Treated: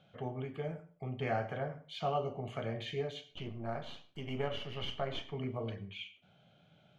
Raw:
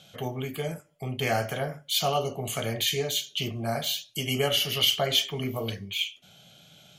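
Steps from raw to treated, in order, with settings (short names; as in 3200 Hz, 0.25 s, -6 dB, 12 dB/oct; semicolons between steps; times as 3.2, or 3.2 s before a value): 3.31–5.32 half-wave gain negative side -7 dB; LPF 1800 Hz 12 dB/oct; reverb RT60 0.35 s, pre-delay 88 ms, DRR 17 dB; gain -7 dB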